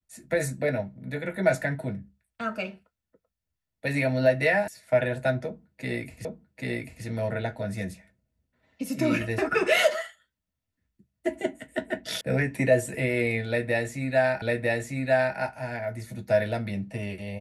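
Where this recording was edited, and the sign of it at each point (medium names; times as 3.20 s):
4.68 s: sound stops dead
6.25 s: repeat of the last 0.79 s
12.21 s: sound stops dead
14.42 s: repeat of the last 0.95 s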